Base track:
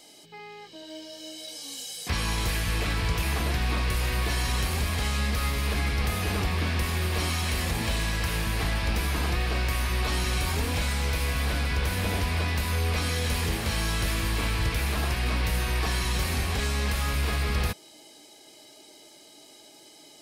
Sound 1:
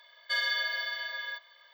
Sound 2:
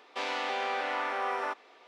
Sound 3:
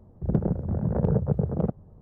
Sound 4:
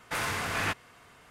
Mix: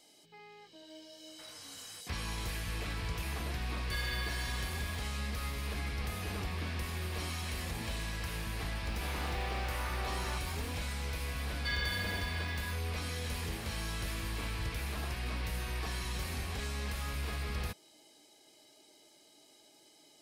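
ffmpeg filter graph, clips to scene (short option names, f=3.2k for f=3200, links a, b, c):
-filter_complex "[1:a]asplit=2[a][b];[0:a]volume=-10.5dB[c];[4:a]acompressor=threshold=-39dB:ratio=6:attack=3.2:release=140:knee=1:detection=peak[d];[2:a]aeval=exprs='val(0)+0.5*0.0106*sgn(val(0))':c=same[e];[d]atrim=end=1.3,asetpts=PTS-STARTPTS,volume=-15.5dB,afade=t=in:d=0.004:c=hsin,afade=t=out:st=1.296:d=0.004:c=hsin,adelay=1280[f];[a]atrim=end=1.73,asetpts=PTS-STARTPTS,volume=-10dB,afade=t=in:d=0.004:c=hsin,afade=t=out:st=1.726:d=0.004:c=hsin,adelay=159201S[g];[e]atrim=end=1.87,asetpts=PTS-STARTPTS,volume=-11dB,afade=t=in:d=0.004:c=hsin,afade=t=out:st=1.866:d=0.004:c=hsin,adelay=8850[h];[b]atrim=end=1.73,asetpts=PTS-STARTPTS,volume=-7dB,afade=t=in:d=0.004:c=hsin,afade=t=out:st=1.726:d=0.004:c=hsin,adelay=11350[i];[c][f][g][h][i]amix=inputs=5:normalize=0"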